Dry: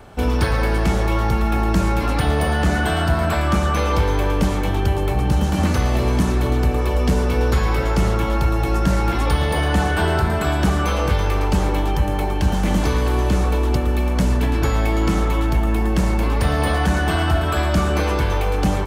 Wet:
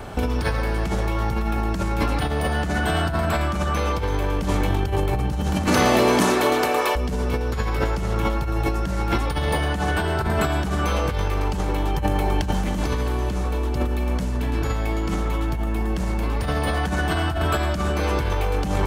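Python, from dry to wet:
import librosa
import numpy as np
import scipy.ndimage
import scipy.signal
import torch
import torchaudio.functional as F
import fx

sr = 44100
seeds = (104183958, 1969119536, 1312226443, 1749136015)

y = fx.highpass(x, sr, hz=fx.line((5.66, 180.0), (6.95, 690.0)), slope=12, at=(5.66, 6.95), fade=0.02)
y = fx.over_compress(y, sr, threshold_db=-24.0, ratio=-1.0)
y = y * librosa.db_to_amplitude(2.0)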